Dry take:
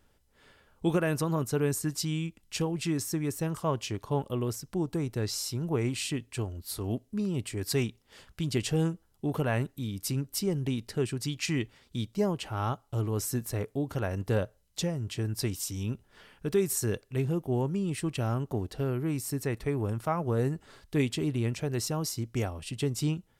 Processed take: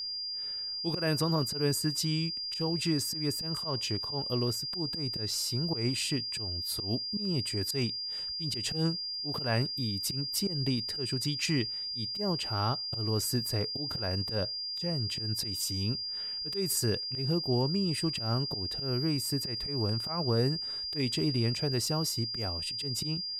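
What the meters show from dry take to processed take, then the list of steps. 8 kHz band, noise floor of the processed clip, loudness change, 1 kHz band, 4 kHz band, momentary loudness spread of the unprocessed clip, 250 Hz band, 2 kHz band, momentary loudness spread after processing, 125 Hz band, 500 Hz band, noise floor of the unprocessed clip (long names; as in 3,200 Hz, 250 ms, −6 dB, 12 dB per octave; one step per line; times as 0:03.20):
−0.5 dB, −37 dBFS, +1.0 dB, −2.5 dB, +11.0 dB, 6 LU, −2.0 dB, −2.0 dB, 4 LU, −2.0 dB, −3.5 dB, −68 dBFS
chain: volume swells 136 ms
steady tone 4,800 Hz −34 dBFS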